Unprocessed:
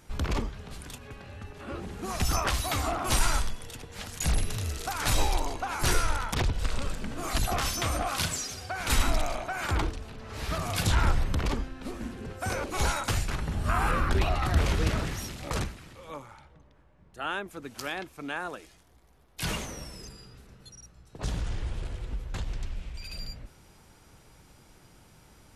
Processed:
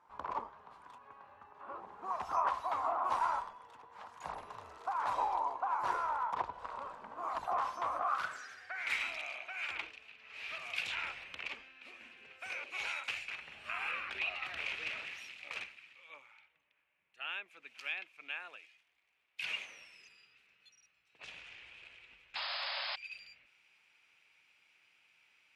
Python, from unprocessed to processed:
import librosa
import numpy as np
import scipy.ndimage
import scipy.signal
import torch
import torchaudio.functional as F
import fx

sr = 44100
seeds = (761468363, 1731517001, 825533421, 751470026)

y = fx.dynamic_eq(x, sr, hz=580.0, q=1.2, threshold_db=-47.0, ratio=4.0, max_db=5)
y = fx.filter_sweep_bandpass(y, sr, from_hz=1000.0, to_hz=2500.0, start_s=7.88, end_s=9.09, q=5.8)
y = fx.spec_paint(y, sr, seeds[0], shape='noise', start_s=22.35, length_s=0.61, low_hz=540.0, high_hz=5200.0, level_db=-43.0)
y = y * 10.0 ** (4.0 / 20.0)